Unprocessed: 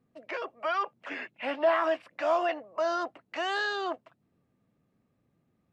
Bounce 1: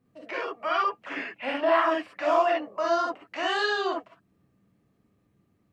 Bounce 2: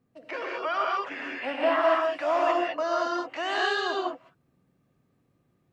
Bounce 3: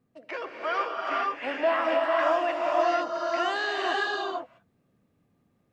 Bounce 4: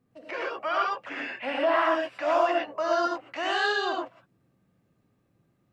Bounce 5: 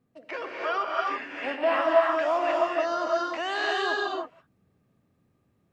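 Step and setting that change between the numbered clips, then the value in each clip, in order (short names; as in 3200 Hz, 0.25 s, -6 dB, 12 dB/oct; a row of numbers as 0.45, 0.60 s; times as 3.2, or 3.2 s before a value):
non-linear reverb, gate: 80, 230, 520, 140, 350 ms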